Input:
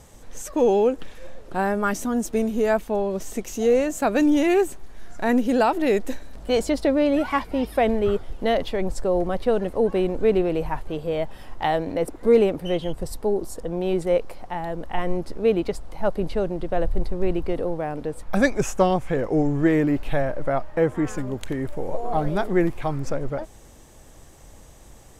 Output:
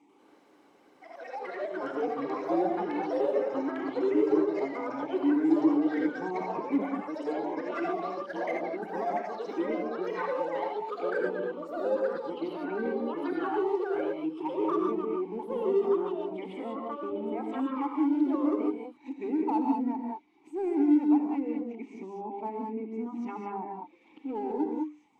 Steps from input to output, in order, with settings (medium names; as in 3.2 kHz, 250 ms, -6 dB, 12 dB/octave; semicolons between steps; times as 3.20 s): reverse the whole clip; high-pass 200 Hz 12 dB/octave; hum notches 50/100/150/200/250/300 Hz; low-pass that closes with the level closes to 1.1 kHz, closed at -19 dBFS; reverb removal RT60 0.69 s; vowel filter u; in parallel at -10 dB: hard clipper -33.5 dBFS, distortion -5 dB; on the sum: gated-style reverb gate 230 ms rising, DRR 0.5 dB; ever faster or slower copies 94 ms, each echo +5 st, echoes 3